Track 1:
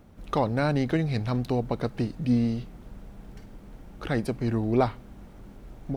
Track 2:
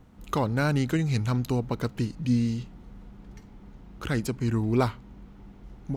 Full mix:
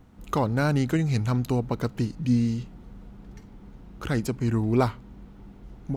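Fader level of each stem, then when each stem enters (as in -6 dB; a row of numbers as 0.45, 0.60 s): -13.0, 0.0 dB; 0.00, 0.00 s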